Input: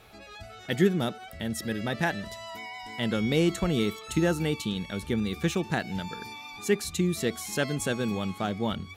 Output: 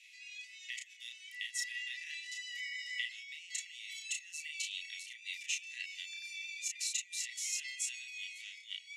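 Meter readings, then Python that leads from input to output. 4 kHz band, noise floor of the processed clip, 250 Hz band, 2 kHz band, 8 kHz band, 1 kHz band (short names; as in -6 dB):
-4.0 dB, -57 dBFS, under -40 dB, -6.0 dB, +0.5 dB, under -40 dB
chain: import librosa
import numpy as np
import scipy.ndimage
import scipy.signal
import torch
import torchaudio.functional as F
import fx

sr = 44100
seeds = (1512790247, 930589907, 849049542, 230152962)

y = fx.high_shelf(x, sr, hz=8400.0, db=3.5)
y = fx.over_compress(y, sr, threshold_db=-31.0, ratio=-1.0)
y = scipy.signal.sosfilt(scipy.signal.cheby1(6, 9, 1900.0, 'highpass', fs=sr, output='sos'), y)
y = fx.air_absorb(y, sr, metres=73.0)
y = fx.doubler(y, sr, ms=33.0, db=-3.0)
y = y * 10.0 ** (2.5 / 20.0)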